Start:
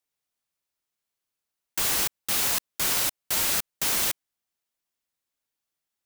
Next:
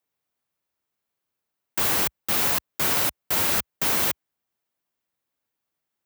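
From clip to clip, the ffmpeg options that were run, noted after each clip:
-af "highpass=f=61:w=0.5412,highpass=f=61:w=1.3066,equalizer=f=7.3k:t=o:w=3:g=-9,volume=6.5dB"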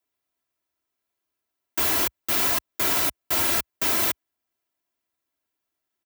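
-af "aecho=1:1:3:0.64,volume=-1.5dB"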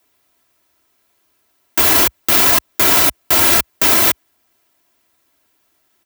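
-af "alimiter=level_in=21dB:limit=-1dB:release=50:level=0:latency=1,volume=-1dB"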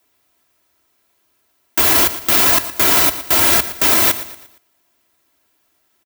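-af "aecho=1:1:116|232|348|464:0.211|0.0845|0.0338|0.0135,volume=-1dB"

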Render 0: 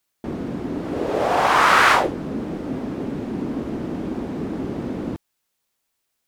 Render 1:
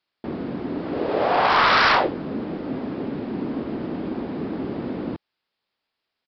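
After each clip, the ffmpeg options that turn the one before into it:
-af "lowshelf=f=93:g=-10,aresample=11025,aeval=exprs='0.282*(abs(mod(val(0)/0.282+3,4)-2)-1)':c=same,aresample=44100"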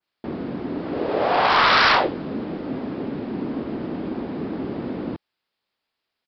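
-af "adynamicequalizer=threshold=0.0251:dfrequency=3900:dqfactor=0.9:tfrequency=3900:tqfactor=0.9:attack=5:release=100:ratio=0.375:range=1.5:mode=boostabove:tftype=bell"

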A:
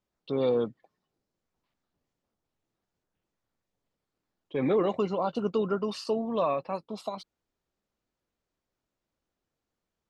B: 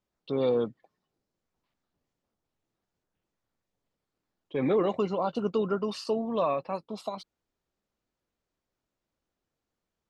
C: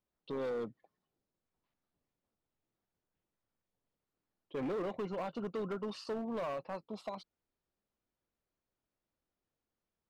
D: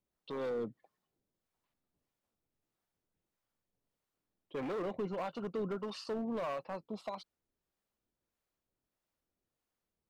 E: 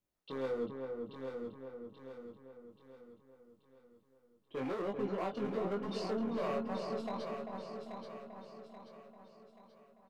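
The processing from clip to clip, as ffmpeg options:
-af anull
-af "highshelf=f=5.8k:g=-9,alimiter=limit=-21.5dB:level=0:latency=1:release=320,volume=28.5dB,asoftclip=hard,volume=-28.5dB,volume=-5dB"
-filter_complex "[0:a]acrossover=split=570[a][b];[a]aeval=exprs='val(0)*(1-0.5/2+0.5/2*cos(2*PI*1.6*n/s))':c=same[c];[b]aeval=exprs='val(0)*(1-0.5/2-0.5/2*cos(2*PI*1.6*n/s))':c=same[d];[c][d]amix=inputs=2:normalize=0,volume=2.5dB"
-filter_complex "[0:a]asplit=2[a][b];[b]aecho=0:1:832|1664|2496|3328|4160:0.473|0.208|0.0916|0.0403|0.0177[c];[a][c]amix=inputs=2:normalize=0,flanger=delay=19.5:depth=3.5:speed=1.2,asplit=2[d][e];[e]adelay=393,lowpass=f=1.4k:p=1,volume=-4.5dB,asplit=2[f][g];[g]adelay=393,lowpass=f=1.4k:p=1,volume=0.46,asplit=2[h][i];[i]adelay=393,lowpass=f=1.4k:p=1,volume=0.46,asplit=2[j][k];[k]adelay=393,lowpass=f=1.4k:p=1,volume=0.46,asplit=2[l][m];[m]adelay=393,lowpass=f=1.4k:p=1,volume=0.46,asplit=2[n][o];[o]adelay=393,lowpass=f=1.4k:p=1,volume=0.46[p];[f][h][j][l][n][p]amix=inputs=6:normalize=0[q];[d][q]amix=inputs=2:normalize=0,volume=2.5dB"

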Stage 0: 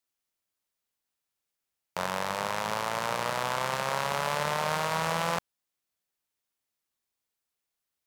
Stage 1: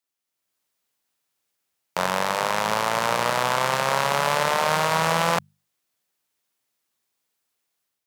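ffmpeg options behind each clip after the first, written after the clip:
-af "highpass=89,bandreject=f=50:t=h:w=6,bandreject=f=100:t=h:w=6,bandreject=f=150:t=h:w=6,bandreject=f=200:t=h:w=6,dynaudnorm=f=270:g=3:m=8dB"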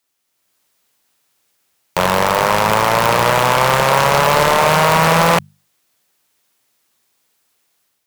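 -af "aeval=exprs='0.596*sin(PI/2*2.82*val(0)/0.596)':c=same"

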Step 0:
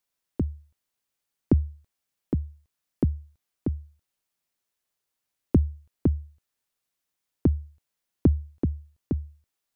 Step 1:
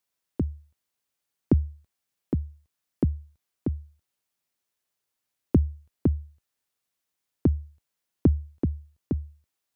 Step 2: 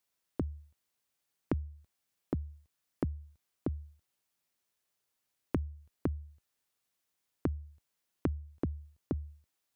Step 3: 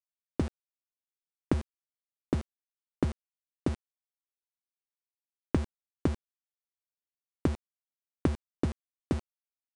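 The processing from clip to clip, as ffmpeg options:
-af "highpass=45"
-af "acompressor=threshold=-32dB:ratio=4"
-af "aeval=exprs='val(0)*gte(abs(val(0)),0.0158)':c=same,aresample=22050,aresample=44100,volume=5dB"

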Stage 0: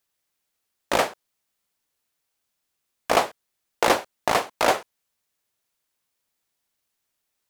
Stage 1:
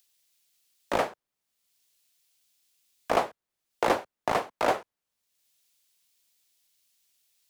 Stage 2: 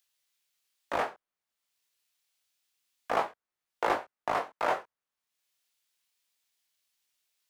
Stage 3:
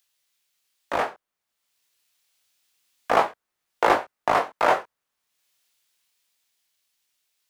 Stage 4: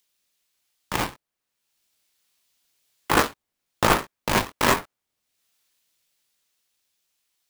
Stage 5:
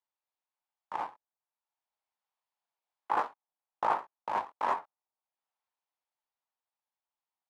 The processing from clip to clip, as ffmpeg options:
-filter_complex "[0:a]highshelf=f=2.4k:g=-9.5,acrossover=split=130|1300|2800[a][b][c][d];[d]acompressor=mode=upward:threshold=-49dB:ratio=2.5[e];[a][b][c][e]amix=inputs=4:normalize=0,volume=-3.5dB"
-af "flanger=delay=19.5:depth=7.1:speed=0.27,equalizer=f=1.3k:w=0.54:g=8,volume=-6dB"
-af "dynaudnorm=f=220:g=17:m=4dB,volume=5dB"
-filter_complex "[0:a]acrossover=split=1500[a][b];[a]acrusher=samples=19:mix=1:aa=0.000001:lfo=1:lforange=30.4:lforate=1.2[c];[c][b]amix=inputs=2:normalize=0,aeval=exprs='val(0)*sgn(sin(2*PI*360*n/s))':c=same"
-af "bandpass=f=870:t=q:w=3.3:csg=0,volume=-3dB"

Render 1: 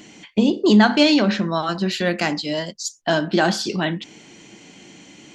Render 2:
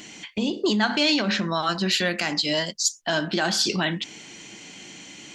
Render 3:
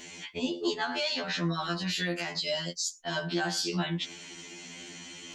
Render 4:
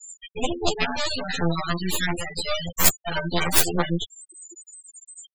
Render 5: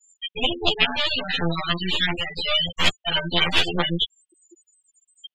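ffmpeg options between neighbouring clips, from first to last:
-af "lowshelf=f=260:g=4.5,alimiter=limit=-12.5dB:level=0:latency=1:release=136,tiltshelf=f=850:g=-5.5"
-af "areverse,acompressor=mode=upward:threshold=-45dB:ratio=2.5,areverse,alimiter=limit=-18dB:level=0:latency=1:release=210,afftfilt=real='re*2*eq(mod(b,4),0)':imag='im*2*eq(mod(b,4),0)':win_size=2048:overlap=0.75"
-af "aexciter=amount=10.4:drive=8.1:freq=8k,aeval=exprs='0.299*(cos(1*acos(clip(val(0)/0.299,-1,1)))-cos(1*PI/2))+0.106*(cos(6*acos(clip(val(0)/0.299,-1,1)))-cos(6*PI/2))+0.0944*(cos(7*acos(clip(val(0)/0.299,-1,1)))-cos(7*PI/2))':c=same,afftfilt=real='re*gte(hypot(re,im),0.0501)':imag='im*gte(hypot(re,im),0.0501)':win_size=1024:overlap=0.75,volume=5.5dB"
-af "lowpass=f=3.1k:t=q:w=4.9,volume=-1dB"

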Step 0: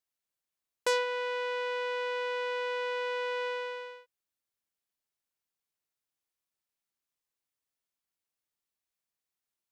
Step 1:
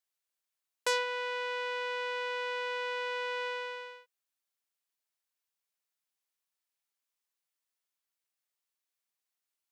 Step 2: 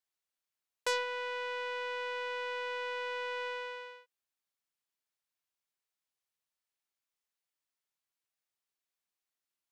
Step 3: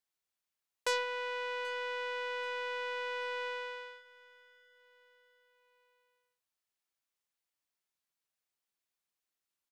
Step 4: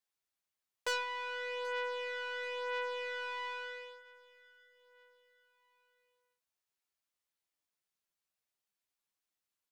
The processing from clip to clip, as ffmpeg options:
-af "highpass=f=740:p=1,volume=1dB"
-af "aeval=exprs='0.224*(cos(1*acos(clip(val(0)/0.224,-1,1)))-cos(1*PI/2))+0.00631*(cos(6*acos(clip(val(0)/0.224,-1,1)))-cos(6*PI/2))':c=same,highshelf=f=7.2k:g=-4.5,volume=-1.5dB"
-af "aecho=1:1:783|1566|2349:0.0841|0.0412|0.0202"
-af "flanger=delay=9.4:depth=3.5:regen=13:speed=0.22:shape=triangular,asoftclip=type=hard:threshold=-24.5dB,volume=2dB"

